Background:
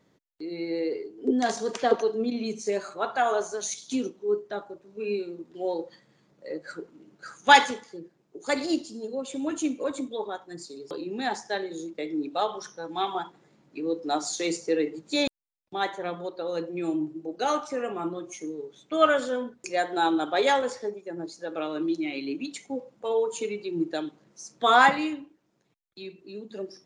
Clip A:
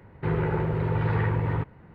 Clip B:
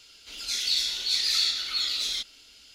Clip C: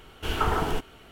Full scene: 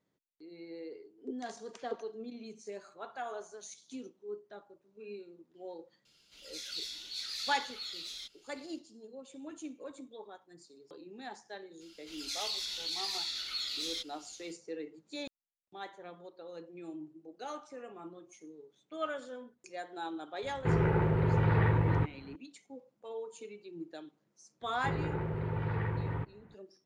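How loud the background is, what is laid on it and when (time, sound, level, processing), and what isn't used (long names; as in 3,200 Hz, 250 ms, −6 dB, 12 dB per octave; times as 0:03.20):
background −16 dB
0:06.05: mix in B −14.5 dB
0:11.80: mix in B −7.5 dB, fades 0.02 s + brickwall limiter −20 dBFS
0:20.42: mix in A −2 dB
0:24.61: mix in A −9 dB
not used: C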